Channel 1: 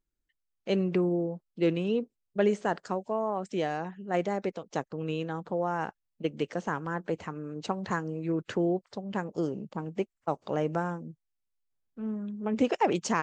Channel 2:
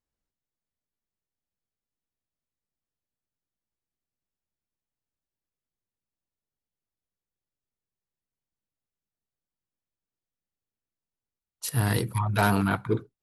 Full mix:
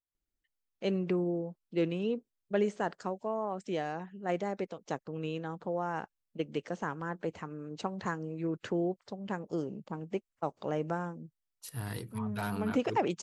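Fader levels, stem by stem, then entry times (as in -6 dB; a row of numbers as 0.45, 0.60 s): -4.0, -13.5 dB; 0.15, 0.00 s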